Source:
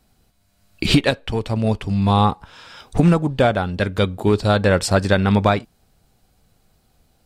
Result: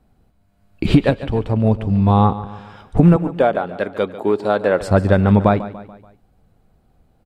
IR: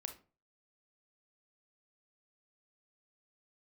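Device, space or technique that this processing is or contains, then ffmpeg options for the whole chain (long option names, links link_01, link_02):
through cloth: -filter_complex "[0:a]asettb=1/sr,asplit=3[link_01][link_02][link_03];[link_01]atrim=end=3.164[link_04];[link_02]atrim=start=3.16:end=4.81,asetpts=PTS-STARTPTS,afade=type=in:duration=0.004:curve=qsin,afade=type=out:start_time=1.646:duration=0.004:curve=qsin,highpass=340[link_05];[link_03]atrim=start=4.806[link_06];[link_04][link_05]acrossfade=duration=0.004:curve1=hsin:curve2=qsin[link_07];[link_07][link_06]acrossfade=duration=0.004:curve1=qsin:curve2=hsin,highshelf=frequency=2000:gain=-15.5,equalizer=frequency=5400:width=1.5:gain=-4,aecho=1:1:144|288|432|576:0.178|0.0854|0.041|0.0197,volume=3.5dB"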